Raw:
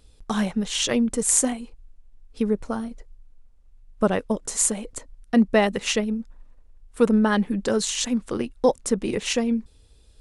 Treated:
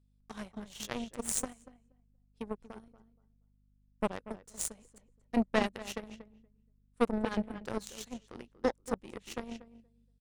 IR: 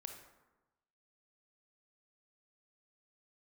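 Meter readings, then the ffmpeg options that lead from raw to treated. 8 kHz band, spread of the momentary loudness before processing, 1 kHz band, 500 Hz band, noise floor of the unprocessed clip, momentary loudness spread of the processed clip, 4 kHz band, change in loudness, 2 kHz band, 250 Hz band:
−16.0 dB, 11 LU, −10.0 dB, −13.0 dB, −54 dBFS, 18 LU, −16.5 dB, −13.5 dB, −12.0 dB, −14.5 dB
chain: -filter_complex "[0:a]asplit=2[link_01][link_02];[link_02]adelay=236,lowpass=frequency=2200:poles=1,volume=-7dB,asplit=2[link_03][link_04];[link_04]adelay=236,lowpass=frequency=2200:poles=1,volume=0.24,asplit=2[link_05][link_06];[link_06]adelay=236,lowpass=frequency=2200:poles=1,volume=0.24[link_07];[link_01][link_03][link_05][link_07]amix=inputs=4:normalize=0,aeval=exprs='val(0)+0.0126*(sin(2*PI*50*n/s)+sin(2*PI*2*50*n/s)/2+sin(2*PI*3*50*n/s)/3+sin(2*PI*4*50*n/s)/4+sin(2*PI*5*50*n/s)/5)':channel_layout=same,aeval=exprs='0.75*(cos(1*acos(clip(val(0)/0.75,-1,1)))-cos(1*PI/2))+0.0335*(cos(3*acos(clip(val(0)/0.75,-1,1)))-cos(3*PI/2))+0.0944*(cos(4*acos(clip(val(0)/0.75,-1,1)))-cos(4*PI/2))+0.0422*(cos(6*acos(clip(val(0)/0.75,-1,1)))-cos(6*PI/2))+0.0841*(cos(7*acos(clip(val(0)/0.75,-1,1)))-cos(7*PI/2))':channel_layout=same,volume=-8.5dB"

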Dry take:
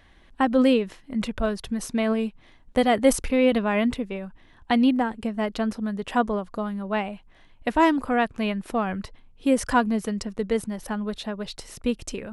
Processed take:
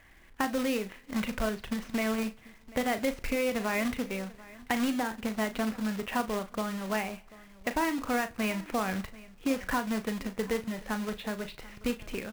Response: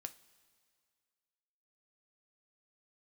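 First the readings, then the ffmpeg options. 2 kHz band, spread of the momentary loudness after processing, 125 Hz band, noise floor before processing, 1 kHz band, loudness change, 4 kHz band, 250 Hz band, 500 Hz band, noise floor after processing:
−3.5 dB, 7 LU, −5.5 dB, −54 dBFS, −7.5 dB, −7.5 dB, −5.0 dB, −8.0 dB, −8.5 dB, −55 dBFS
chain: -filter_complex "[0:a]lowpass=frequency=2300:width_type=q:width=2,acompressor=threshold=-22dB:ratio=8,acrusher=bits=2:mode=log:mix=0:aa=0.000001,aecho=1:1:739:0.0944,asplit=2[link_01][link_02];[1:a]atrim=start_sample=2205,adelay=37[link_03];[link_02][link_03]afir=irnorm=-1:irlink=0,volume=-6dB[link_04];[link_01][link_04]amix=inputs=2:normalize=0,volume=-4.5dB"

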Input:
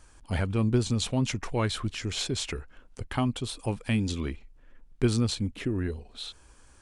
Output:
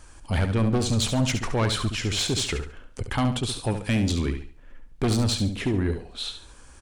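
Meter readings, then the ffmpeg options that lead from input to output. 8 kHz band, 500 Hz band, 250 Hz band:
+6.0 dB, +3.5 dB, +3.5 dB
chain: -filter_complex "[0:a]asplit=2[link_01][link_02];[link_02]aeval=exprs='0.251*sin(PI/2*3.98*val(0)/0.251)':channel_layout=same,volume=-11.5dB[link_03];[link_01][link_03]amix=inputs=2:normalize=0,aecho=1:1:70|140|210|280:0.376|0.117|0.0361|0.0112,volume=-2dB"

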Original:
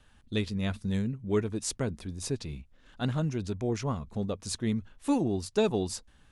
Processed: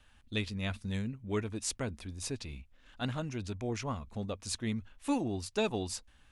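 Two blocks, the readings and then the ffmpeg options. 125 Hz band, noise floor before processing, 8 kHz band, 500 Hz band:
−5.5 dB, −60 dBFS, −2.0 dB, −6.0 dB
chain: -af "equalizer=frequency=160:width_type=o:width=0.67:gain=-8,equalizer=frequency=400:width_type=o:width=0.67:gain=-5,equalizer=frequency=2500:width_type=o:width=0.67:gain=4,volume=-2dB"

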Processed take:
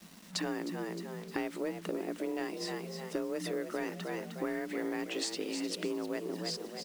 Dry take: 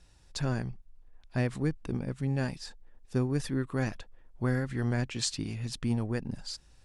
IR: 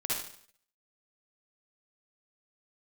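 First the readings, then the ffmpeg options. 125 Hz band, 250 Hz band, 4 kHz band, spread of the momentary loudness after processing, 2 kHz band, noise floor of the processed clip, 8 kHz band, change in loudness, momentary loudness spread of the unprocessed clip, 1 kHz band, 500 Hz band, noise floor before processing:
−17.0 dB, −3.5 dB, 0.0 dB, 4 LU, −1.5 dB, −49 dBFS, −2.5 dB, −4.0 dB, 10 LU, +0.5 dB, +1.5 dB, −60 dBFS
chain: -filter_complex "[0:a]afreqshift=160,crystalizer=i=4:c=0,bass=frequency=250:gain=-2,treble=frequency=4000:gain=-11,asoftclip=type=tanh:threshold=-18.5dB,highshelf=frequency=9500:gain=-10.5,bandreject=frequency=50:width_type=h:width=6,bandreject=frequency=100:width_type=h:width=6,bandreject=frequency=150:width_type=h:width=6,bandreject=frequency=200:width_type=h:width=6,bandreject=frequency=250:width_type=h:width=6,bandreject=frequency=300:width_type=h:width=6,asplit=5[link_01][link_02][link_03][link_04][link_05];[link_02]adelay=308,afreqshift=50,volume=-11dB[link_06];[link_03]adelay=616,afreqshift=100,volume=-19.6dB[link_07];[link_04]adelay=924,afreqshift=150,volume=-28.3dB[link_08];[link_05]adelay=1232,afreqshift=200,volume=-36.9dB[link_09];[link_01][link_06][link_07][link_08][link_09]amix=inputs=5:normalize=0,acompressor=threshold=-38dB:ratio=8,acrusher=bits=9:mix=0:aa=0.000001,volume=5.5dB"

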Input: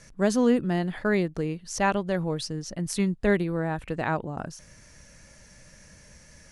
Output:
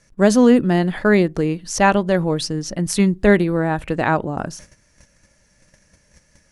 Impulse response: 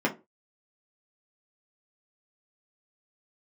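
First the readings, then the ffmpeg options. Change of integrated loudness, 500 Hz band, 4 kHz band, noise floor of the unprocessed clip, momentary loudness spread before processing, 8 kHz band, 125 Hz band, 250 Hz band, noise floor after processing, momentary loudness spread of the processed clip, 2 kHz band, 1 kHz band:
+9.0 dB, +9.0 dB, +8.5 dB, −53 dBFS, 10 LU, +8.5 dB, +8.5 dB, +9.5 dB, −59 dBFS, 10 LU, +9.0 dB, +9.5 dB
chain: -filter_complex "[0:a]agate=range=-15dB:threshold=-48dB:ratio=16:detection=peak,asplit=2[link_01][link_02];[1:a]atrim=start_sample=2205[link_03];[link_02][link_03]afir=irnorm=-1:irlink=0,volume=-30dB[link_04];[link_01][link_04]amix=inputs=2:normalize=0,volume=8.5dB"

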